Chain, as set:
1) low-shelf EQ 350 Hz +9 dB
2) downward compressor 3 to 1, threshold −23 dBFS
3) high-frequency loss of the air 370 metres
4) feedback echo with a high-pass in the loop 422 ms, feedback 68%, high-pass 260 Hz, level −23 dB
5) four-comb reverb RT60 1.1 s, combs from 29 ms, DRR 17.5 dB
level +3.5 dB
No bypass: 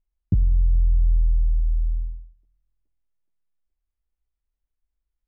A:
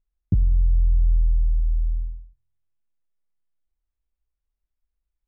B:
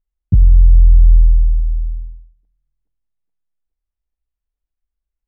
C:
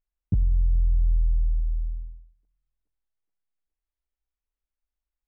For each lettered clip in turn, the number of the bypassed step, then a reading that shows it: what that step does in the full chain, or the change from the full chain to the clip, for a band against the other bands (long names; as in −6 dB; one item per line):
4, echo-to-direct ratio −16.0 dB to −17.5 dB
2, average gain reduction 7.5 dB
1, change in momentary loudness spread +1 LU